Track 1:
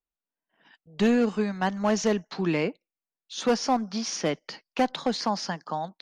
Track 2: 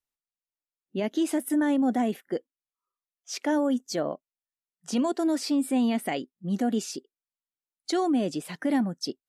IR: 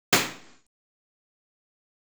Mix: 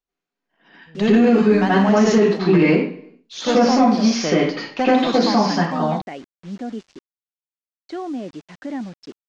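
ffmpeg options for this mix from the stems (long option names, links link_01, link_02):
-filter_complex "[0:a]volume=2dB,asplit=2[link_01][link_02];[link_02]volume=-13.5dB[link_03];[1:a]lowpass=2700,acrusher=bits=6:mix=0:aa=0.000001,volume=-3.5dB[link_04];[2:a]atrim=start_sample=2205[link_05];[link_03][link_05]afir=irnorm=-1:irlink=0[link_06];[link_01][link_04][link_06]amix=inputs=3:normalize=0,lowpass=frequency=6700:width=0.5412,lowpass=frequency=6700:width=1.3066,alimiter=limit=-6.5dB:level=0:latency=1:release=29"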